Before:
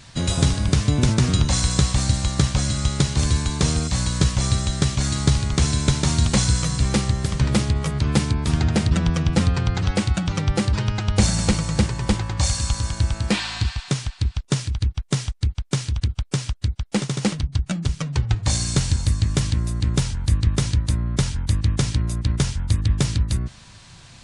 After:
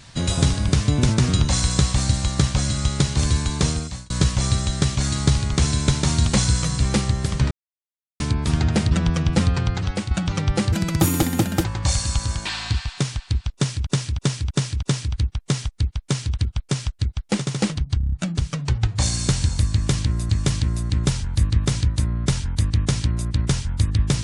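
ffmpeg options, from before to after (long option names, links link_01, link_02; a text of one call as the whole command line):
ffmpeg -i in.wav -filter_complex "[0:a]asplit=18[link_01][link_02][link_03][link_04][link_05][link_06][link_07][link_08][link_09][link_10][link_11][link_12][link_13][link_14][link_15][link_16][link_17][link_18];[link_01]atrim=end=4.1,asetpts=PTS-STARTPTS,afade=type=out:start_time=3.62:duration=0.48[link_19];[link_02]atrim=start=4.1:end=7.51,asetpts=PTS-STARTPTS,afade=type=in:duration=0.004:curve=hsin,afade=type=out:start_time=3.406:duration=0.004:curve=hsin[link_20];[link_03]atrim=start=7.51:end=8.2,asetpts=PTS-STARTPTS,volume=0[link_21];[link_04]atrim=start=8.2:end=10.11,asetpts=PTS-STARTPTS,afade=type=in:duration=0.004:curve=hsin,afade=type=out:start_time=1.42:duration=0.49:silence=0.446684[link_22];[link_05]atrim=start=10.11:end=10.724,asetpts=PTS-STARTPTS,afade=type=in:duration=0.004:curve=hsin:silence=0.446684[link_23];[link_06]atrim=start=10.72:end=12.19,asetpts=PTS-STARTPTS,asetrate=70119,aresample=44100[link_24];[link_07]atrim=start=12.186:end=13.002[link_25];[link_08]atrim=start=13.358:end=14.772[link_26];[link_09]atrim=start=14.448:end=14.772[link_27];[link_10]atrim=start=14.448:end=14.772[link_28];[link_11]atrim=start=14.448:end=14.772[link_29];[link_12]atrim=start=14.448:end=17.632[link_30];[link_13]atrim=start=17.598:end=17.632[link_31];[link_14]atrim=start=17.598:end=17.632[link_32];[link_15]atrim=start=17.598:end=17.632[link_33];[link_16]atrim=start=17.598:end=17.632[link_34];[link_17]atrim=start=17.598:end=19.772[link_35];[link_18]atrim=start=19.198[link_36];[link_19][link_20][link_21][link_22][link_23]concat=n=5:v=0:a=1[link_37];[link_37][link_24]acrossfade=duration=0.004:curve1=hsin:curve2=hsin[link_38];[link_38][link_25]acrossfade=duration=0.004:curve1=hsin:curve2=hsin[link_39];[link_39][link_26]acrossfade=duration=0.004:curve1=hsin:curve2=hsin[link_40];[link_40][link_27]acrossfade=duration=0.004:curve1=hsin:curve2=hsin[link_41];[link_41][link_28]acrossfade=duration=0.004:curve1=hsin:curve2=hsin[link_42];[link_42][link_29]acrossfade=duration=0.004:curve1=hsin:curve2=hsin[link_43];[link_43][link_30]acrossfade=duration=0.004:curve1=hsin:curve2=hsin[link_44];[link_44][link_31]acrossfade=duration=0.004:curve1=hsin:curve2=hsin[link_45];[link_45][link_32]acrossfade=duration=0.004:curve1=hsin:curve2=hsin[link_46];[link_46][link_33]acrossfade=duration=0.004:curve1=hsin:curve2=hsin[link_47];[link_47][link_34]acrossfade=duration=0.004:curve1=hsin:curve2=hsin[link_48];[link_48][link_35]acrossfade=duration=0.004:curve1=hsin:curve2=hsin[link_49];[link_49][link_36]acrossfade=duration=0.004:curve1=hsin:curve2=hsin" out.wav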